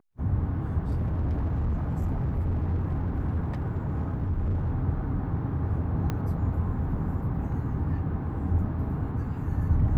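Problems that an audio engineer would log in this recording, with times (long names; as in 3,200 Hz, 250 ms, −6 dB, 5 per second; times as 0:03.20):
0:00.83–0:04.71: clipping −23.5 dBFS
0:06.10: click −17 dBFS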